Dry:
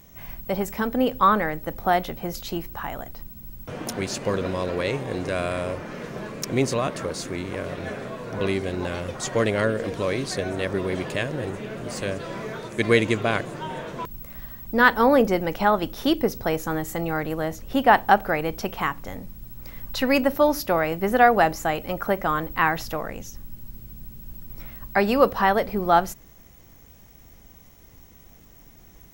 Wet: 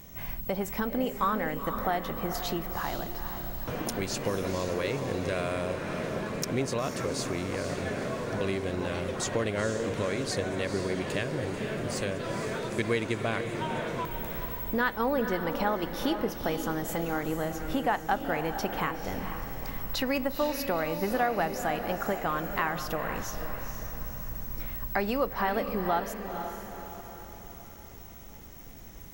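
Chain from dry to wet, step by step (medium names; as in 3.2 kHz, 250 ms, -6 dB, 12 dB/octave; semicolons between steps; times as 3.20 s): compression 2.5:1, threshold -33 dBFS, peak gain reduction 15 dB; on a send: echo that smears into a reverb 478 ms, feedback 50%, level -7.5 dB; on the sum: trim +2 dB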